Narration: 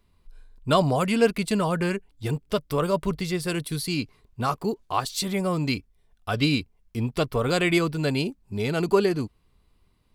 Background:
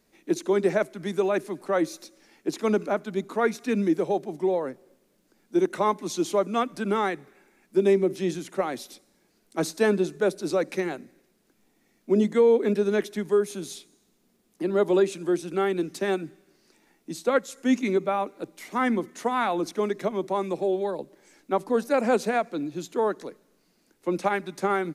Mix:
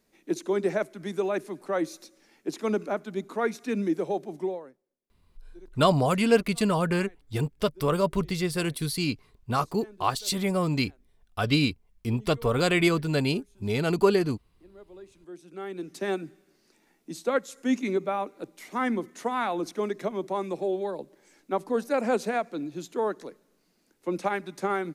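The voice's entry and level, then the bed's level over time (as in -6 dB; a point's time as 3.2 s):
5.10 s, -0.5 dB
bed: 4.43 s -3.5 dB
4.88 s -27.5 dB
14.93 s -27.5 dB
16.07 s -3 dB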